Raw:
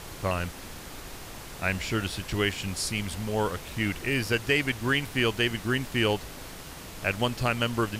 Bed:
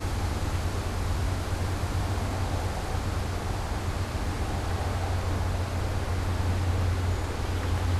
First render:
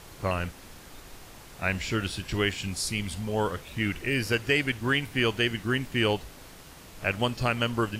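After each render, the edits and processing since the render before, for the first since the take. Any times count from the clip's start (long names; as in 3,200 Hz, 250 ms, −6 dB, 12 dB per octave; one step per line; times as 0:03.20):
noise reduction from a noise print 6 dB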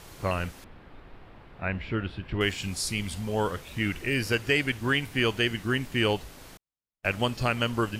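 0:00.64–0:02.41: high-frequency loss of the air 450 metres
0:06.57–0:07.16: noise gate −36 dBFS, range −53 dB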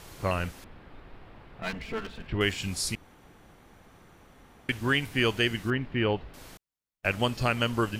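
0:01.62–0:02.27: lower of the sound and its delayed copy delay 4.5 ms
0:02.95–0:04.69: fill with room tone
0:05.70–0:06.34: high-frequency loss of the air 370 metres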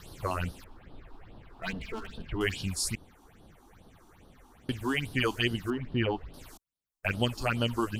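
all-pass phaser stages 6, 2.4 Hz, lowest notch 130–2,200 Hz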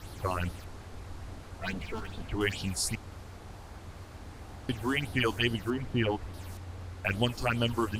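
mix in bed −16 dB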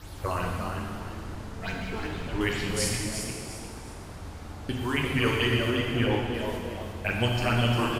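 on a send: echo with shifted repeats 352 ms, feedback 32%, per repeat +120 Hz, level −7 dB
on the sum: dense smooth reverb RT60 2.2 s, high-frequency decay 0.9×, DRR −1 dB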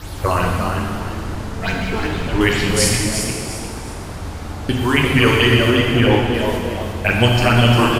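level +12 dB
brickwall limiter −2 dBFS, peak gain reduction 2.5 dB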